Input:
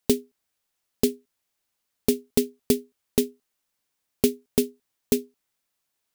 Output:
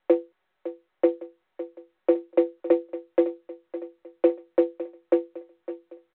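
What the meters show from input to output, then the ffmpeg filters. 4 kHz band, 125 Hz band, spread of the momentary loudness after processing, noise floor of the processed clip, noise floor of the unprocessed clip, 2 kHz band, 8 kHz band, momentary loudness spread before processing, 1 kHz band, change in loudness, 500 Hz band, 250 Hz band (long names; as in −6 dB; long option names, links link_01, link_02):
below −15 dB, below −30 dB, 16 LU, −76 dBFS, −79 dBFS, −1.5 dB, below −40 dB, 3 LU, +8.0 dB, +1.5 dB, +4.0 dB, +1.0 dB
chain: -filter_complex "[0:a]asplit=2[link_01][link_02];[link_02]asoftclip=type=tanh:threshold=-19dB,volume=-4.5dB[link_03];[link_01][link_03]amix=inputs=2:normalize=0,aeval=exprs='0.631*(cos(1*acos(clip(val(0)/0.631,-1,1)))-cos(1*PI/2))+0.0224*(cos(3*acos(clip(val(0)/0.631,-1,1)))-cos(3*PI/2))+0.0126*(cos(8*acos(clip(val(0)/0.631,-1,1)))-cos(8*PI/2))':channel_layout=same,highpass=frequency=250:width_type=q:width=0.5412,highpass=frequency=250:width_type=q:width=1.307,lowpass=frequency=2000:width_type=q:width=0.5176,lowpass=frequency=2000:width_type=q:width=0.7071,lowpass=frequency=2000:width_type=q:width=1.932,afreqshift=91,aecho=1:1:5.4:0.76,aecho=1:1:558|1116|1674|2232|2790:0.2|0.0998|0.0499|0.0249|0.0125" -ar 8000 -c:a pcm_mulaw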